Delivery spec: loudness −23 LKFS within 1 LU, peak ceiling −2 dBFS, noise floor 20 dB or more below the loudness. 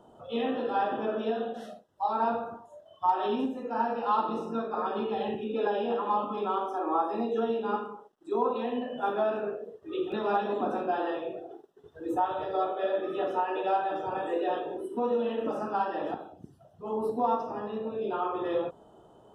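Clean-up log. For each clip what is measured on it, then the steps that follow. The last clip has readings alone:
number of dropouts 1; longest dropout 1.2 ms; integrated loudness −30.5 LKFS; sample peak −14.5 dBFS; target loudness −23.0 LKFS
→ repair the gap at 0:10.12, 1.2 ms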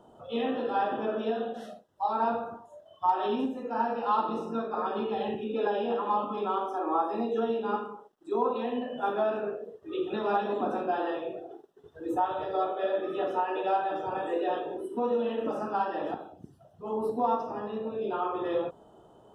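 number of dropouts 0; integrated loudness −30.5 LKFS; sample peak −14.5 dBFS; target loudness −23.0 LKFS
→ level +7.5 dB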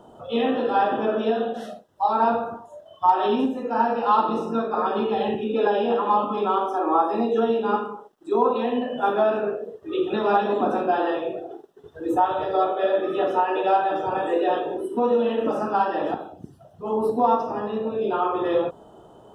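integrated loudness −23.5 LKFS; sample peak −7.0 dBFS; background noise floor −50 dBFS

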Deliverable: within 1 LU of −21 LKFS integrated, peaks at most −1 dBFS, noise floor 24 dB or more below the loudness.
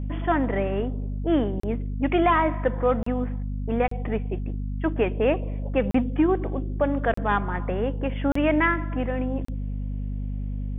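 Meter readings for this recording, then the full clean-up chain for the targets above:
number of dropouts 7; longest dropout 34 ms; mains hum 50 Hz; hum harmonics up to 250 Hz; level of the hum −27 dBFS; integrated loudness −25.5 LKFS; sample peak −10.0 dBFS; target loudness −21.0 LKFS
→ repair the gap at 0:01.60/0:03.03/0:03.88/0:05.91/0:07.14/0:08.32/0:09.45, 34 ms
hum removal 50 Hz, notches 5
level +4.5 dB

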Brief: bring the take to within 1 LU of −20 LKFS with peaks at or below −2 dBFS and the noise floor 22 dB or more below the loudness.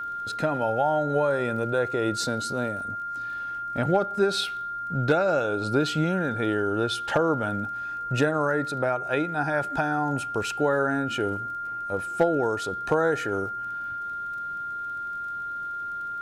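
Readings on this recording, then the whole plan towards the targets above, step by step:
crackle rate 24 per second; interfering tone 1,400 Hz; level of the tone −30 dBFS; integrated loudness −26.5 LKFS; sample peak −11.0 dBFS; target loudness −20.0 LKFS
→ click removal
notch filter 1,400 Hz, Q 30
level +6.5 dB

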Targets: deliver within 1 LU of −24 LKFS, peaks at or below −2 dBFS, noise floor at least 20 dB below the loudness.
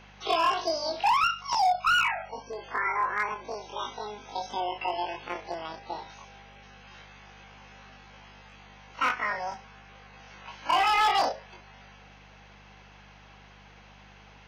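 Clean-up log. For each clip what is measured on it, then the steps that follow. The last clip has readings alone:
share of clipped samples 0.6%; peaks flattened at −18.5 dBFS; mains hum 50 Hz; hum harmonics up to 200 Hz; level of the hum −54 dBFS; integrated loudness −28.0 LKFS; sample peak −18.5 dBFS; target loudness −24.0 LKFS
→ clipped peaks rebuilt −18.5 dBFS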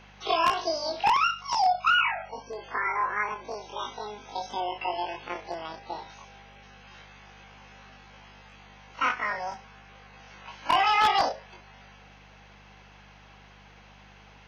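share of clipped samples 0.0%; mains hum 50 Hz; hum harmonics up to 200 Hz; level of the hum −53 dBFS
→ hum removal 50 Hz, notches 4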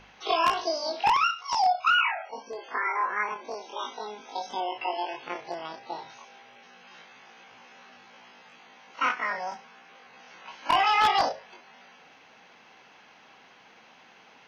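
mains hum none found; integrated loudness −27.5 LKFS; sample peak −9.5 dBFS; target loudness −24.0 LKFS
→ level +3.5 dB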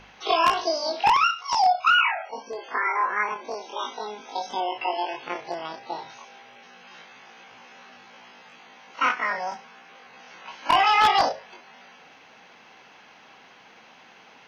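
integrated loudness −24.0 LKFS; sample peak −6.0 dBFS; background noise floor −52 dBFS

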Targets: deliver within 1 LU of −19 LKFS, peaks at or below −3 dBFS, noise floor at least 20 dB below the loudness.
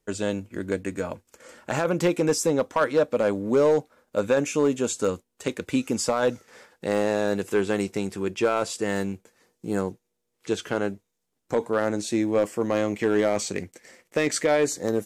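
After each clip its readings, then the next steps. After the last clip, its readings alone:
share of clipped samples 0.7%; peaks flattened at −14.0 dBFS; integrated loudness −25.5 LKFS; sample peak −14.0 dBFS; target loudness −19.0 LKFS
→ clipped peaks rebuilt −14 dBFS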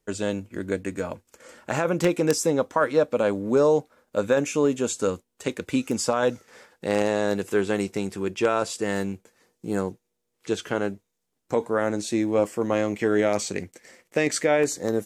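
share of clipped samples 0.0%; integrated loudness −25.0 LKFS; sample peak −5.0 dBFS; target loudness −19.0 LKFS
→ level +6 dB
brickwall limiter −3 dBFS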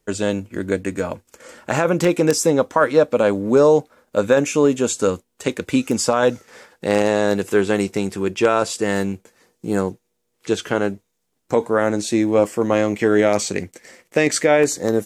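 integrated loudness −19.5 LKFS; sample peak −3.0 dBFS; background noise floor −72 dBFS

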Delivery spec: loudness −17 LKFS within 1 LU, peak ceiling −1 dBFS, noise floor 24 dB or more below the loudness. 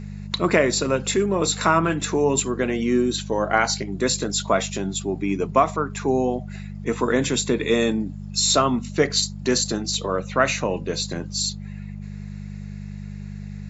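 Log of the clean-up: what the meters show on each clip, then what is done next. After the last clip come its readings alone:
mains hum 50 Hz; hum harmonics up to 200 Hz; level of the hum −32 dBFS; integrated loudness −22.0 LKFS; sample peak −5.0 dBFS; target loudness −17.0 LKFS
→ hum removal 50 Hz, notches 4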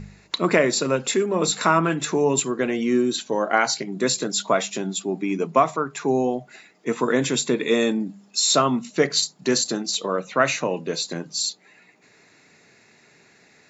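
mains hum none found; integrated loudness −22.5 LKFS; sample peak −5.5 dBFS; target loudness −17.0 LKFS
→ level +5.5 dB
brickwall limiter −1 dBFS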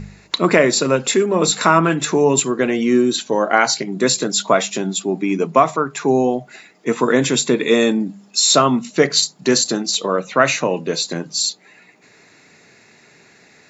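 integrated loudness −17.0 LKFS; sample peak −1.0 dBFS; background noise floor −50 dBFS

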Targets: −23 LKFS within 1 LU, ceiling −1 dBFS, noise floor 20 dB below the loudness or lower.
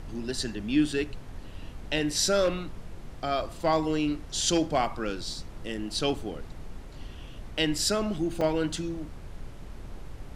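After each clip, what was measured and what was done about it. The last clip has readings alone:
number of dropouts 2; longest dropout 3.4 ms; background noise floor −43 dBFS; target noise floor −49 dBFS; integrated loudness −28.5 LKFS; sample peak −11.0 dBFS; target loudness −23.0 LKFS
→ repair the gap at 0:07.58/0:08.41, 3.4 ms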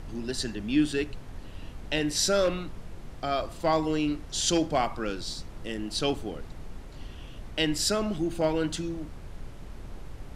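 number of dropouts 0; background noise floor −43 dBFS; target noise floor −49 dBFS
→ noise reduction from a noise print 6 dB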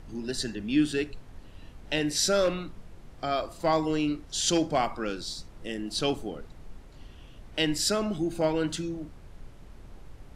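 background noise floor −49 dBFS; integrated loudness −29.0 LKFS; sample peak −11.0 dBFS; target loudness −23.0 LKFS
→ level +6 dB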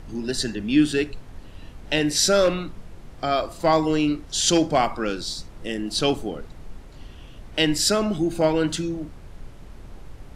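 integrated loudness −23.0 LKFS; sample peak −5.0 dBFS; background noise floor −43 dBFS

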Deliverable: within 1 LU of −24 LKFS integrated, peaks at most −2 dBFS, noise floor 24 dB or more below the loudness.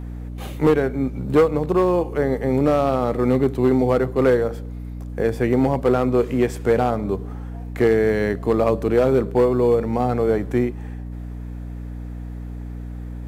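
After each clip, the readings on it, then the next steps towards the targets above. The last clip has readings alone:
share of clipped samples 1.3%; peaks flattened at −9.5 dBFS; mains hum 60 Hz; hum harmonics up to 300 Hz; level of the hum −29 dBFS; integrated loudness −20.0 LKFS; sample peak −9.5 dBFS; target loudness −24.0 LKFS
→ clipped peaks rebuilt −9.5 dBFS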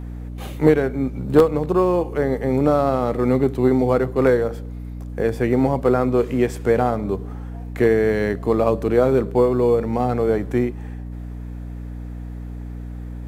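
share of clipped samples 0.0%; mains hum 60 Hz; hum harmonics up to 300 Hz; level of the hum −29 dBFS
→ hum removal 60 Hz, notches 5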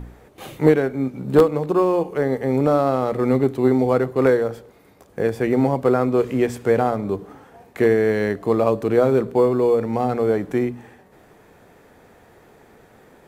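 mains hum none found; integrated loudness −19.5 LKFS; sample peak −2.5 dBFS; target loudness −24.0 LKFS
→ level −4.5 dB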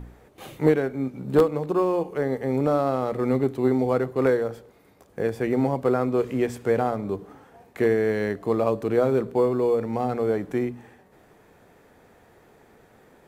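integrated loudness −24.0 LKFS; sample peak −7.0 dBFS; background noise floor −56 dBFS

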